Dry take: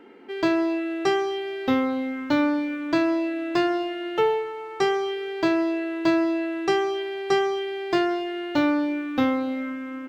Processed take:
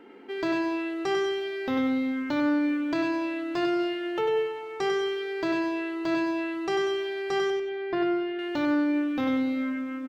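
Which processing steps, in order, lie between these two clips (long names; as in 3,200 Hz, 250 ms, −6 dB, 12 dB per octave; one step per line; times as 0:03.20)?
0:07.50–0:08.39: high-frequency loss of the air 340 metres
repeating echo 95 ms, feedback 26%, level −6 dB
brickwall limiter −17.5 dBFS, peak gain reduction 7.5 dB
level −1.5 dB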